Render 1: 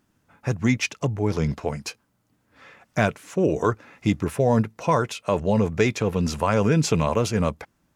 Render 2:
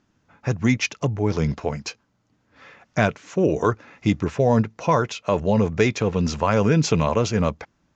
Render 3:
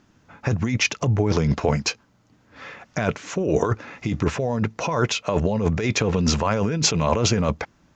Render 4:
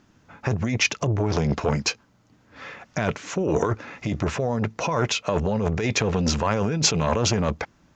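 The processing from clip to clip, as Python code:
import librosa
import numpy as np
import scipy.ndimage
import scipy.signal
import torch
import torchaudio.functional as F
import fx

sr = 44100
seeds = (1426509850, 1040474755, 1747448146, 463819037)

y1 = scipy.signal.sosfilt(scipy.signal.butter(12, 7100.0, 'lowpass', fs=sr, output='sos'), x)
y1 = y1 * librosa.db_to_amplitude(1.5)
y2 = fx.over_compress(y1, sr, threshold_db=-24.0, ratio=-1.0)
y2 = y2 * librosa.db_to_amplitude(3.5)
y3 = fx.transformer_sat(y2, sr, knee_hz=590.0)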